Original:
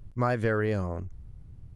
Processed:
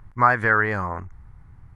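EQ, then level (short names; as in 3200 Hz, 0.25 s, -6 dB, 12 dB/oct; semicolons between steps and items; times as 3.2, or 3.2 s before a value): band shelf 1300 Hz +15 dB; 0.0 dB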